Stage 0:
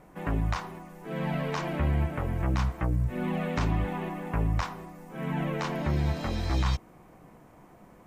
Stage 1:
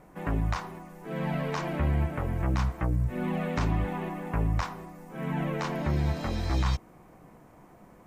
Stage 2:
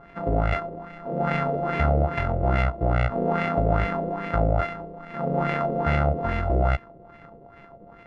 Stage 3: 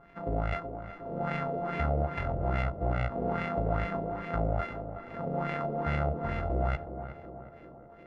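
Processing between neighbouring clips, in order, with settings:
parametric band 3,100 Hz −2 dB
samples sorted by size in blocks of 64 samples; auto-filter low-pass sine 2.4 Hz 500–2,200 Hz; level +4 dB
tape delay 369 ms, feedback 72%, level −7 dB, low-pass 1,000 Hz; level −8 dB

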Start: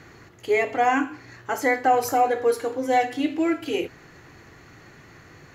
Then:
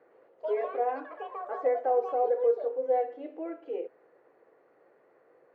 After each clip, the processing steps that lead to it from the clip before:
delay with pitch and tempo change per echo 111 ms, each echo +7 semitones, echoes 3, each echo −6 dB
four-pole ladder band-pass 560 Hz, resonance 65%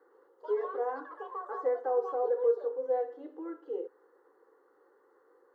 low-shelf EQ 210 Hz −10.5 dB
phaser with its sweep stopped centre 650 Hz, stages 6
level +2 dB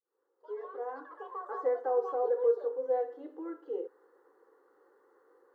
fade in at the beginning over 1.59 s

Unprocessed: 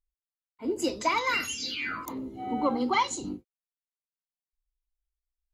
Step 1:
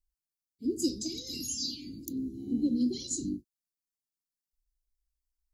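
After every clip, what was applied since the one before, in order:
elliptic band-stop filter 310–4,700 Hz, stop band 60 dB
level +2.5 dB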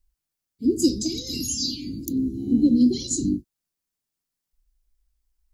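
low-shelf EQ 250 Hz +6.5 dB
level +7.5 dB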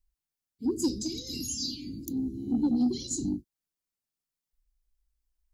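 soft clipping −11.5 dBFS, distortion −19 dB
level −6.5 dB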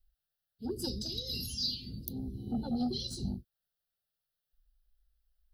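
phaser with its sweep stopped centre 1,500 Hz, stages 8
level +4 dB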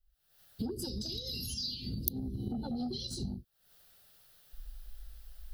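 camcorder AGC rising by 73 dB per second
level −4.5 dB

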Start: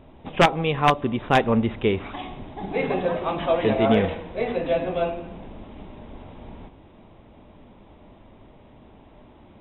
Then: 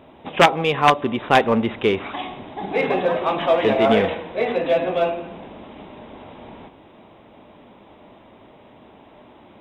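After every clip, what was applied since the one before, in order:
high-pass filter 340 Hz 6 dB per octave
in parallel at −8.5 dB: hard clipping −22.5 dBFS, distortion −6 dB
on the sum: level +3.5 dB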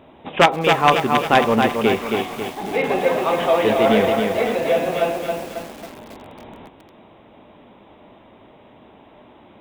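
feedback echo at a low word length 272 ms, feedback 55%, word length 6 bits, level −4 dB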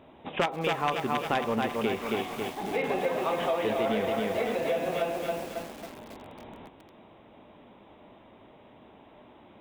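downward compressor 4 to 1, threshold −19 dBFS, peak gain reduction 9.5 dB
level −6 dB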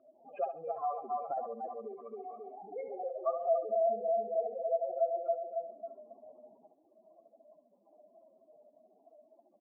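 expanding power law on the bin magnitudes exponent 4
pair of resonant band-passes 910 Hz, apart 0.84 octaves
repeating echo 69 ms, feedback 28%, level −9 dB
level +1 dB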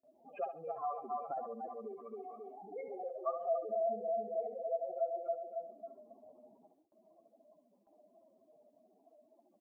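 noise gate with hold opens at −59 dBFS
parametric band 620 Hz −7 dB 1.2 octaves
level +2 dB

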